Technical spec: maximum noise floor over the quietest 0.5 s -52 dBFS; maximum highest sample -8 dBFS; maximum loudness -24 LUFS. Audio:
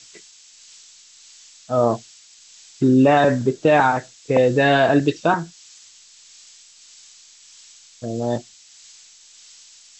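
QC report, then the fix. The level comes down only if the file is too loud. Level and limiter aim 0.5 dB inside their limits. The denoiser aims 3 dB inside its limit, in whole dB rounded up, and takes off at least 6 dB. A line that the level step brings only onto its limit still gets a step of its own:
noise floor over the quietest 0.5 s -48 dBFS: fail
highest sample -5.5 dBFS: fail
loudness -18.5 LUFS: fail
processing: trim -6 dB

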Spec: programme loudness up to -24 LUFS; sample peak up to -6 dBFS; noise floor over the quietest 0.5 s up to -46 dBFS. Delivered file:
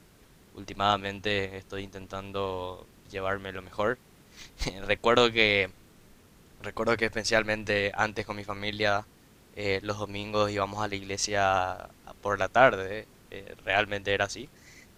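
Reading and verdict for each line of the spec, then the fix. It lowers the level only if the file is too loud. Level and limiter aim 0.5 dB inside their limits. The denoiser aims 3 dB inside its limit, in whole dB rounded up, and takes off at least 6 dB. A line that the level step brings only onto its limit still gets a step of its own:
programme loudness -28.0 LUFS: pass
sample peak -4.0 dBFS: fail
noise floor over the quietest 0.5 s -57 dBFS: pass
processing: peak limiter -6.5 dBFS

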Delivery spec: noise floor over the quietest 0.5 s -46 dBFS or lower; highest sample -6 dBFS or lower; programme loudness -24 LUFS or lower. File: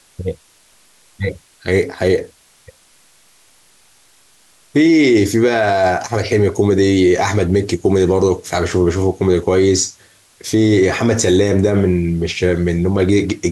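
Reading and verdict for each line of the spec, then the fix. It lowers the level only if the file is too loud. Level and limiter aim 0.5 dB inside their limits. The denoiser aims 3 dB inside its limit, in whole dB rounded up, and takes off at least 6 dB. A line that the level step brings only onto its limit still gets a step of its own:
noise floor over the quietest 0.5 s -52 dBFS: pass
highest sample -4.5 dBFS: fail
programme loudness -15.0 LUFS: fail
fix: trim -9.5 dB

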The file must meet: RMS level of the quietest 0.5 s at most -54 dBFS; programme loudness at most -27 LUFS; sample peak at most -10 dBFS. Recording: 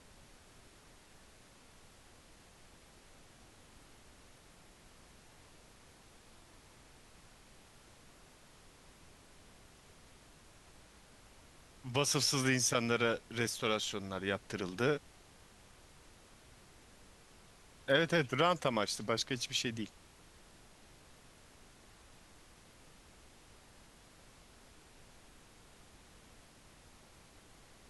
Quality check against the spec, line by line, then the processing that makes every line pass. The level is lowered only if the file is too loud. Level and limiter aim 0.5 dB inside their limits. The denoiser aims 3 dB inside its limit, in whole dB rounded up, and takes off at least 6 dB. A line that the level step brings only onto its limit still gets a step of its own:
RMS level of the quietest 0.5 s -60 dBFS: pass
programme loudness -33.5 LUFS: pass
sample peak -14.0 dBFS: pass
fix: none needed

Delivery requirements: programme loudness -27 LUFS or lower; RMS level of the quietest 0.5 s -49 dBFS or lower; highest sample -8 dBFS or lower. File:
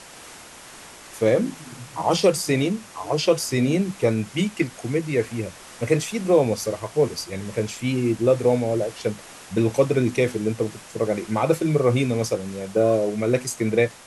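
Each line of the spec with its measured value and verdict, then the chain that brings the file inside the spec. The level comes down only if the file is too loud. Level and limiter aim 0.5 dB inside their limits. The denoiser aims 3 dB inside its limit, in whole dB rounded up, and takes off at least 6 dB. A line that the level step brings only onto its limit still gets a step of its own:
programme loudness -23.0 LUFS: fail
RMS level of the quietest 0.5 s -43 dBFS: fail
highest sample -6.5 dBFS: fail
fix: noise reduction 6 dB, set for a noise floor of -43 dBFS; trim -4.5 dB

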